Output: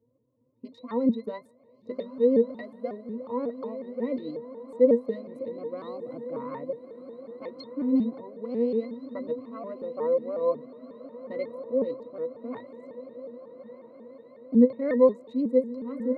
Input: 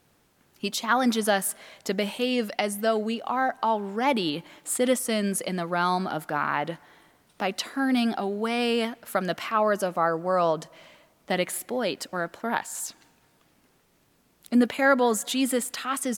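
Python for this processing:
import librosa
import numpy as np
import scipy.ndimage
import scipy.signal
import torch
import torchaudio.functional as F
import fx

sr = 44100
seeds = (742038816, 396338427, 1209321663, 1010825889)

p1 = fx.wiener(x, sr, points=25)
p2 = fx.peak_eq(p1, sr, hz=420.0, db=14.0, octaves=1.2)
p3 = fx.octave_resonator(p2, sr, note='B', decay_s=0.12)
p4 = p3 + fx.echo_diffused(p3, sr, ms=1351, feedback_pct=58, wet_db=-13.5, dry=0)
p5 = fx.vibrato_shape(p4, sr, shape='saw_up', rate_hz=5.5, depth_cents=160.0)
y = p5 * librosa.db_to_amplitude(-2.0)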